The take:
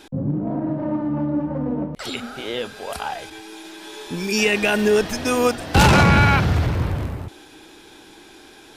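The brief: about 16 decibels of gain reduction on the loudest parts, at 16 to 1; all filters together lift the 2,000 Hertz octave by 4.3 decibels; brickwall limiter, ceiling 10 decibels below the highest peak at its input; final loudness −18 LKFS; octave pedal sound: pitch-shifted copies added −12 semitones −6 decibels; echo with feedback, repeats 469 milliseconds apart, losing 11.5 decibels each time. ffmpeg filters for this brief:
ffmpeg -i in.wav -filter_complex "[0:a]equalizer=frequency=2000:width_type=o:gain=6,acompressor=threshold=-25dB:ratio=16,alimiter=limit=-21.5dB:level=0:latency=1,aecho=1:1:469|938|1407:0.266|0.0718|0.0194,asplit=2[link_01][link_02];[link_02]asetrate=22050,aresample=44100,atempo=2,volume=-6dB[link_03];[link_01][link_03]amix=inputs=2:normalize=0,volume=12dB" out.wav

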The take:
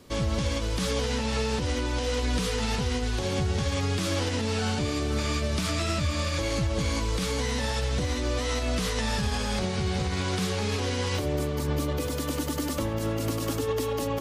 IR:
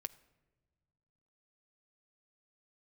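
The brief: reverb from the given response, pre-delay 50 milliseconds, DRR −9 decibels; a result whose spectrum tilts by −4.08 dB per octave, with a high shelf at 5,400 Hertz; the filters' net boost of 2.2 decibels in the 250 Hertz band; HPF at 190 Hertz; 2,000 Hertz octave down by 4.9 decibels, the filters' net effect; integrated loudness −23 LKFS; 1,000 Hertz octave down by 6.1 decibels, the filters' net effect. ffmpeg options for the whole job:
-filter_complex "[0:a]highpass=190,equalizer=frequency=250:width_type=o:gain=5,equalizer=frequency=1000:width_type=o:gain=-7,equalizer=frequency=2000:width_type=o:gain=-5.5,highshelf=frequency=5400:gain=7,asplit=2[link_01][link_02];[1:a]atrim=start_sample=2205,adelay=50[link_03];[link_02][link_03]afir=irnorm=-1:irlink=0,volume=12dB[link_04];[link_01][link_04]amix=inputs=2:normalize=0,volume=-3.5dB"

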